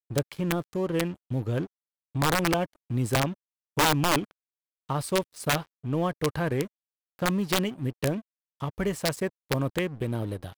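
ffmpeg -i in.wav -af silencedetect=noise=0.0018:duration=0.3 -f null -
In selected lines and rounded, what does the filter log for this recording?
silence_start: 1.67
silence_end: 2.15 | silence_duration: 0.48
silence_start: 3.34
silence_end: 3.77 | silence_duration: 0.42
silence_start: 4.31
silence_end: 4.89 | silence_duration: 0.58
silence_start: 6.67
silence_end: 7.19 | silence_duration: 0.52
silence_start: 8.21
silence_end: 8.60 | silence_duration: 0.39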